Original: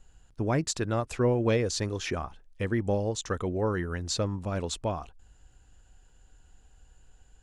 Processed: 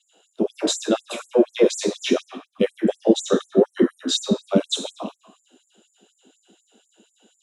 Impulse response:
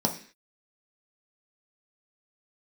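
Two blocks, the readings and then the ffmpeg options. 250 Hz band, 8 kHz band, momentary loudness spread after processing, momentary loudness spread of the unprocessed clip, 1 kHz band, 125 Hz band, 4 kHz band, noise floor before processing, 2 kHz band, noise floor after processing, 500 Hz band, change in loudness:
+10.0 dB, +6.0 dB, 8 LU, 8 LU, +1.5 dB, -5.5 dB, +11.0 dB, -59 dBFS, +2.0 dB, -69 dBFS, +9.0 dB, +8.0 dB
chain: -filter_complex "[0:a]asubboost=boost=9:cutoff=200[a];[1:a]atrim=start_sample=2205,asetrate=29547,aresample=44100[b];[a][b]afir=irnorm=-1:irlink=0,afftfilt=real='re*gte(b*sr/1024,210*pow(7100/210,0.5+0.5*sin(2*PI*4.1*pts/sr)))':imag='im*gte(b*sr/1024,210*pow(7100/210,0.5+0.5*sin(2*PI*4.1*pts/sr)))':win_size=1024:overlap=0.75"

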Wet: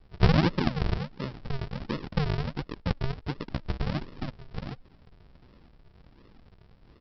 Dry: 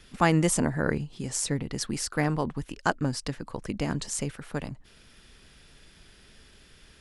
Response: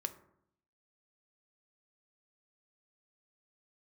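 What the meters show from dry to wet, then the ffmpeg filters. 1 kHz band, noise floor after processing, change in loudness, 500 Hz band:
-4.5 dB, -57 dBFS, -2.0 dB, -4.0 dB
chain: -af "adynamicequalizer=threshold=0.00282:dfrequency=2800:dqfactor=1.6:tfrequency=2800:tqfactor=1.6:attack=5:release=100:ratio=0.375:range=2.5:mode=cutabove:tftype=bell,aresample=11025,acrusher=samples=28:mix=1:aa=0.000001:lfo=1:lforange=28:lforate=1.4,aresample=44100"

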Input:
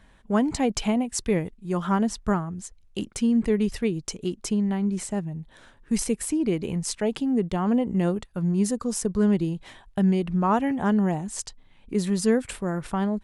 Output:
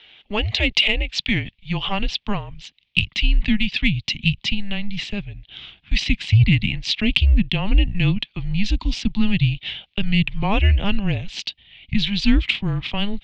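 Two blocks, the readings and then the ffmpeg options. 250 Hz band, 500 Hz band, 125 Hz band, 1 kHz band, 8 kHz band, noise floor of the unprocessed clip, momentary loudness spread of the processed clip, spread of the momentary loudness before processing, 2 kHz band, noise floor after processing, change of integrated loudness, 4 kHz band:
-0.5 dB, -7.0 dB, +9.0 dB, -2.5 dB, -8.5 dB, -56 dBFS, 11 LU, 9 LU, +14.0 dB, -65 dBFS, +4.0 dB, +17.5 dB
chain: -af "highpass=f=310:t=q:w=0.5412,highpass=f=310:t=q:w=1.307,lowpass=f=3.5k:t=q:w=0.5176,lowpass=f=3.5k:t=q:w=0.7071,lowpass=f=3.5k:t=q:w=1.932,afreqshift=-200,aexciter=amount=11.7:drive=8:freq=2.3k,asubboost=boost=7:cutoff=160,volume=1.5dB"

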